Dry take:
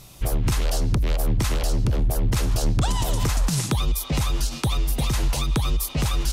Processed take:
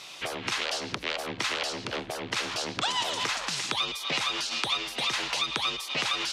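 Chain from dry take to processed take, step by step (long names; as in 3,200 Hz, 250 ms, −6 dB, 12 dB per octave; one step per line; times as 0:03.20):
tilt shelving filter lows −9.5 dB, about 1,300 Hz
in parallel at +3 dB: brickwall limiter −23 dBFS, peak gain reduction 17 dB
on the sum: downward compressor 2.5 to 1, threshold −18 dBFS, peak gain reduction 4 dB
band-pass filter 340–3,100 Hz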